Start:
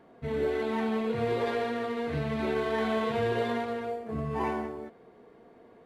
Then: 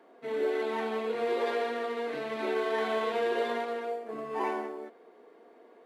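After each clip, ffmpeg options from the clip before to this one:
-af "highpass=f=290:w=0.5412,highpass=f=290:w=1.3066"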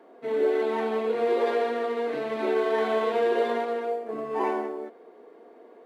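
-af "equalizer=f=400:t=o:w=3:g=6"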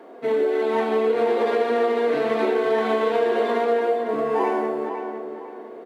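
-filter_complex "[0:a]acompressor=threshold=0.0447:ratio=6,asplit=2[s0][s1];[s1]adelay=505,lowpass=f=3200:p=1,volume=0.422,asplit=2[s2][s3];[s3]adelay=505,lowpass=f=3200:p=1,volume=0.34,asplit=2[s4][s5];[s5]adelay=505,lowpass=f=3200:p=1,volume=0.34,asplit=2[s6][s7];[s7]adelay=505,lowpass=f=3200:p=1,volume=0.34[s8];[s0][s2][s4][s6][s8]amix=inputs=5:normalize=0,volume=2.66"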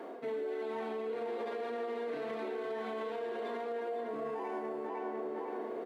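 -af "areverse,acompressor=threshold=0.0355:ratio=6,areverse,alimiter=level_in=2.11:limit=0.0631:level=0:latency=1:release=78,volume=0.473"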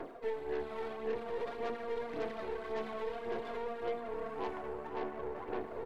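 -af "aphaser=in_gain=1:out_gain=1:delay=2.2:decay=0.54:speed=1.8:type=sinusoidal,aeval=exprs='0.0668*(cos(1*acos(clip(val(0)/0.0668,-1,1)))-cos(1*PI/2))+0.00841*(cos(6*acos(clip(val(0)/0.0668,-1,1)))-cos(6*PI/2))':c=same,volume=0.596"

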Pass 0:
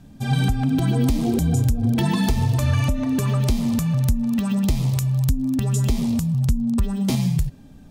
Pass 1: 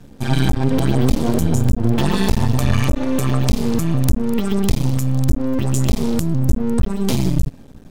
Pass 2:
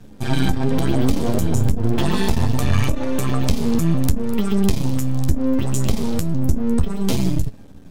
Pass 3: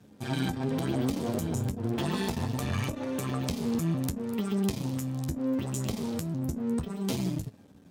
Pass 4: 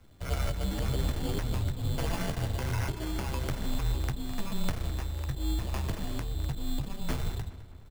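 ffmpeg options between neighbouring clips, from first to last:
-af "aeval=exprs='max(val(0),0)':c=same,volume=2.24"
-af "flanger=delay=9.3:depth=3.3:regen=47:speed=0.67:shape=triangular,volume=1.33"
-af "highpass=110,volume=0.355"
-filter_complex "[0:a]acrusher=samples=11:mix=1:aa=0.000001,asplit=2[s0][s1];[s1]adelay=209,lowpass=f=4800:p=1,volume=0.178,asplit=2[s2][s3];[s3]adelay=209,lowpass=f=4800:p=1,volume=0.53,asplit=2[s4][s5];[s5]adelay=209,lowpass=f=4800:p=1,volume=0.53,asplit=2[s6][s7];[s7]adelay=209,lowpass=f=4800:p=1,volume=0.53,asplit=2[s8][s9];[s9]adelay=209,lowpass=f=4800:p=1,volume=0.53[s10];[s0][s2][s4][s6][s8][s10]amix=inputs=6:normalize=0,afreqshift=-210"

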